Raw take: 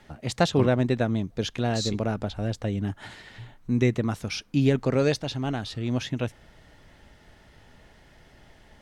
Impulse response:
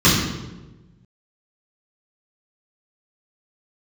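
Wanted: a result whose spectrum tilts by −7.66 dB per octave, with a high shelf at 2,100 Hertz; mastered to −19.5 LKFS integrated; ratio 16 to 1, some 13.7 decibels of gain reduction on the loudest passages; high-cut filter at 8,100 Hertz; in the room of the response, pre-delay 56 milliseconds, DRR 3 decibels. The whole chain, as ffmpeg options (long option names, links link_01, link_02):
-filter_complex "[0:a]lowpass=8100,highshelf=frequency=2100:gain=-3.5,acompressor=threshold=-30dB:ratio=16,asplit=2[link_01][link_02];[1:a]atrim=start_sample=2205,adelay=56[link_03];[link_02][link_03]afir=irnorm=-1:irlink=0,volume=-26.5dB[link_04];[link_01][link_04]amix=inputs=2:normalize=0,volume=9.5dB"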